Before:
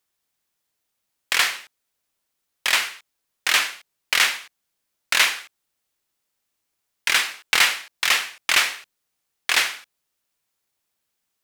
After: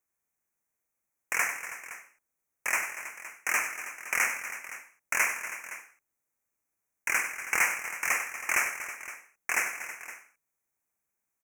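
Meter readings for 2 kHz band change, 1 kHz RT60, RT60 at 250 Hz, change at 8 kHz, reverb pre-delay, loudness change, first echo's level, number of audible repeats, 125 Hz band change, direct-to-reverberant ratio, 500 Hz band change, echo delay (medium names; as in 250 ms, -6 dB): -6.5 dB, no reverb, no reverb, -6.0 dB, no reverb, -9.5 dB, -11.0 dB, 4, no reading, no reverb, -5.5 dB, 97 ms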